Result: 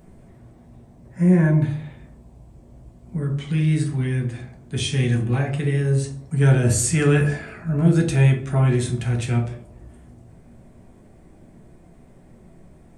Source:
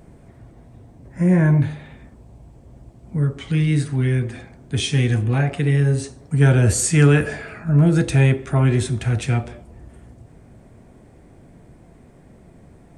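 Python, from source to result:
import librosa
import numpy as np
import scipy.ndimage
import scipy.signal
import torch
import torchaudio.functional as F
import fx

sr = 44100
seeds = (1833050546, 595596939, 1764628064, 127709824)

y = fx.high_shelf(x, sr, hz=8500.0, db=4.5)
y = fx.room_shoebox(y, sr, seeds[0], volume_m3=210.0, walls='furnished', distance_m=1.1)
y = F.gain(torch.from_numpy(y), -4.5).numpy()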